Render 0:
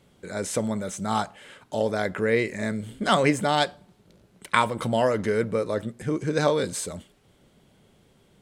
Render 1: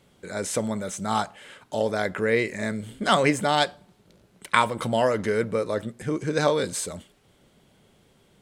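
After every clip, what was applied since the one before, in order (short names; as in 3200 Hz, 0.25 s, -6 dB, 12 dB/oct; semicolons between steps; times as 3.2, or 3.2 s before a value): low shelf 470 Hz -3 dB; gain +1.5 dB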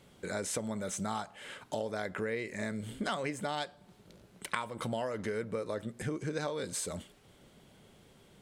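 compressor 6:1, threshold -33 dBFS, peak gain reduction 18 dB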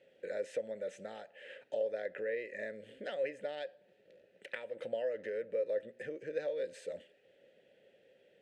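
vowel filter e; gain +6.5 dB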